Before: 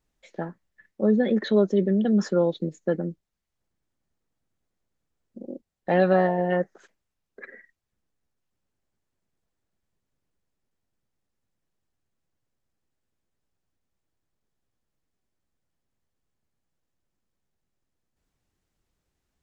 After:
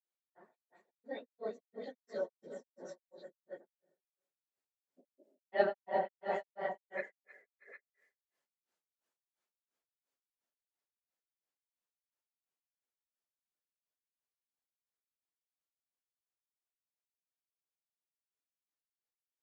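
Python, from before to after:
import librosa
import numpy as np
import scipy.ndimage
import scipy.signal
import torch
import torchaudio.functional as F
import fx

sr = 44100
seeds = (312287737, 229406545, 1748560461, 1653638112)

p1 = fx.phase_scramble(x, sr, seeds[0], window_ms=50)
p2 = fx.doppler_pass(p1, sr, speed_mps=24, closest_m=30.0, pass_at_s=7.75)
p3 = scipy.signal.sosfilt(scipy.signal.butter(2, 490.0, 'highpass', fs=sr, output='sos'), p2)
p4 = p3 + fx.echo_multitap(p3, sr, ms=(344, 529, 669, 800), db=(-12.5, -12.0, -12.5, -8.5), dry=0)
p5 = fx.rev_plate(p4, sr, seeds[1], rt60_s=1.1, hf_ratio=0.8, predelay_ms=105, drr_db=19.0)
p6 = fx.granulator(p5, sr, seeds[2], grain_ms=230.0, per_s=2.9, spray_ms=31.0, spread_st=0)
y = p6 * librosa.db_to_amplitude(1.5)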